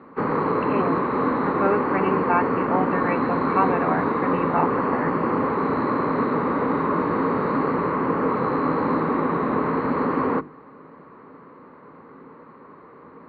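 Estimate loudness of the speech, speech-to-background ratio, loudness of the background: -27.0 LUFS, -4.0 dB, -23.0 LUFS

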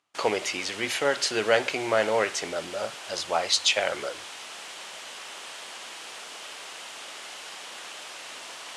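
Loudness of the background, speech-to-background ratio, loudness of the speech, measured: -38.5 LUFS, 12.5 dB, -26.0 LUFS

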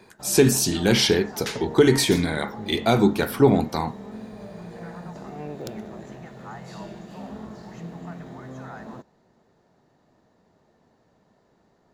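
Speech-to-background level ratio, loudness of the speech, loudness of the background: 18.0 dB, -20.5 LUFS, -38.5 LUFS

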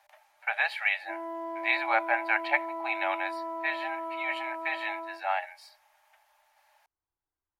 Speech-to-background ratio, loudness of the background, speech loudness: 6.5 dB, -37.0 LUFS, -30.5 LUFS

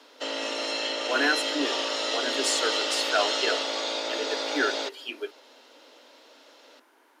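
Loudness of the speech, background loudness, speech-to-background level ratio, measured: -30.0 LUFS, -27.5 LUFS, -2.5 dB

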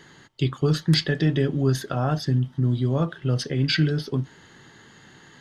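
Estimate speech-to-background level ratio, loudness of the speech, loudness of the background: 19.5 dB, -24.0 LUFS, -43.5 LUFS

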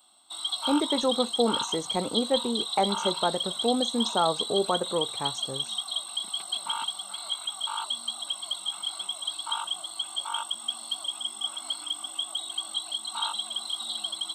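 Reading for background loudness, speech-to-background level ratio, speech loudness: -30.0 LUFS, 1.5 dB, -28.5 LUFS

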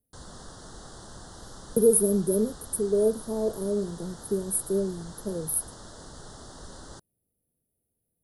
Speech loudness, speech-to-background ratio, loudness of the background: -26.5 LUFS, 19.0 dB, -45.5 LUFS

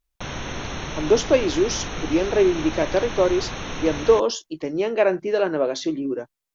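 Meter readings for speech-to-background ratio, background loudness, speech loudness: 9.5 dB, -31.5 LUFS, -22.0 LUFS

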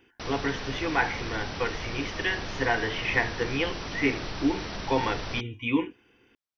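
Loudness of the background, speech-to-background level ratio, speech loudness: -36.0 LUFS, 6.5 dB, -29.5 LUFS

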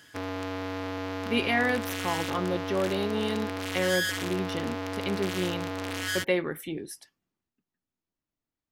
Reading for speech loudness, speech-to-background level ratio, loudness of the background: -30.5 LUFS, 2.5 dB, -33.0 LUFS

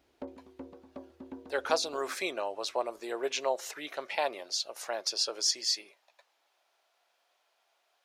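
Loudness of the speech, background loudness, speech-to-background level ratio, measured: -32.5 LUFS, -49.0 LUFS, 16.5 dB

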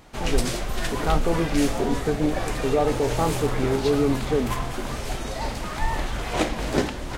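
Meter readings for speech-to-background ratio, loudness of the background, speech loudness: 2.5 dB, -28.5 LUFS, -26.0 LUFS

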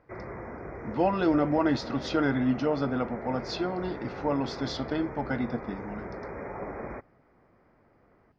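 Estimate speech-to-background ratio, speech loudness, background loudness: 10.5 dB, -29.0 LUFS, -39.5 LUFS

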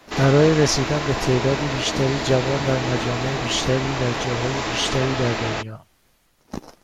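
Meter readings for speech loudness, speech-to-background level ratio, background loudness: -22.5 LUFS, 3.0 dB, -25.5 LUFS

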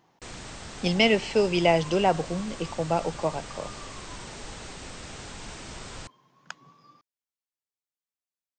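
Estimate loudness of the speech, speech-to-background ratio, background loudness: -25.0 LUFS, 15.5 dB, -40.5 LUFS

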